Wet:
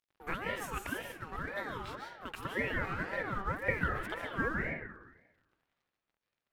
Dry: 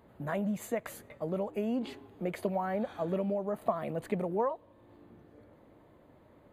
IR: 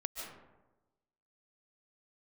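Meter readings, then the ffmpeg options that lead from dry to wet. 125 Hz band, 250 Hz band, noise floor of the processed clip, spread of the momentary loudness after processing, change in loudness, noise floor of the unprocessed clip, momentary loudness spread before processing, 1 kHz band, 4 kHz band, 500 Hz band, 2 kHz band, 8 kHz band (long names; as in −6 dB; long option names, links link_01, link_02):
−1.5 dB, −7.5 dB, below −85 dBFS, 9 LU, −2.5 dB, −61 dBFS, 7 LU, −1.5 dB, +6.0 dB, −7.5 dB, +12.0 dB, can't be measured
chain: -filter_complex "[0:a]lowshelf=frequency=600:width_type=q:width=1.5:gain=-10,aeval=exprs='sgn(val(0))*max(abs(val(0))-0.00133,0)':channel_layout=same[link_01];[1:a]atrim=start_sample=2205[link_02];[link_01][link_02]afir=irnorm=-1:irlink=0,aeval=exprs='val(0)*sin(2*PI*890*n/s+890*0.35/1.9*sin(2*PI*1.9*n/s))':channel_layout=same,volume=4.5dB"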